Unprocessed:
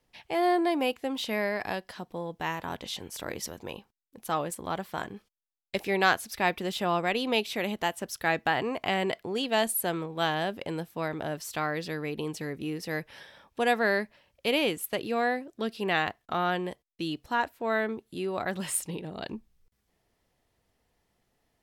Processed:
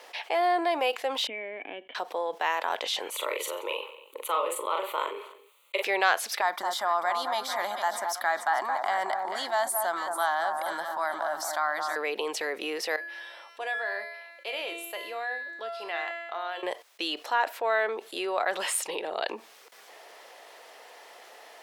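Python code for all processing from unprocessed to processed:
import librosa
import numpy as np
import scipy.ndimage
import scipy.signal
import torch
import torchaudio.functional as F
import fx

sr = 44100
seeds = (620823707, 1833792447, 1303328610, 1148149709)

y = fx.chain(x, sr, fx.formant_cascade(vowel='i'),
    fx.air_absorb(metres=160.0), at=(1.27, 1.95))
y = fx.chain(y, sr, fx.fixed_phaser(hz=1100.0, stages=8),
    fx.doubler(ms=42.0, db=-4),
    fx.echo_feedback(ms=91, feedback_pct=41, wet_db=-23), at=(3.1, 5.83))
y = fx.chain(y, sr, fx.fixed_phaser(hz=1100.0, stages=4),
    fx.echo_alternate(ms=220, hz=1400.0, feedback_pct=59, wet_db=-7.5), at=(6.41, 11.96))
y = fx.chain(y, sr, fx.hum_notches(base_hz=60, count=10),
    fx.comb_fb(f0_hz=340.0, decay_s=0.8, harmonics='all', damping=0.0, mix_pct=90), at=(12.96, 16.63))
y = scipy.signal.sosfilt(scipy.signal.butter(4, 500.0, 'highpass', fs=sr, output='sos'), y)
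y = fx.high_shelf(y, sr, hz=6500.0, db=-10.0)
y = fx.env_flatten(y, sr, amount_pct=50)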